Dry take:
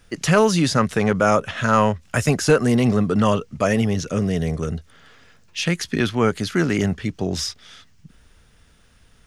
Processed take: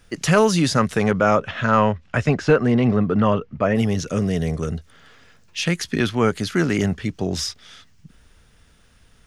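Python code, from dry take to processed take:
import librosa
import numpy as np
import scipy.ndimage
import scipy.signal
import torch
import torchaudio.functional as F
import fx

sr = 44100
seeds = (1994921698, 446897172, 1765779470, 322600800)

y = fx.lowpass(x, sr, hz=fx.line((1.11, 4500.0), (3.75, 2100.0)), slope=12, at=(1.11, 3.75), fade=0.02)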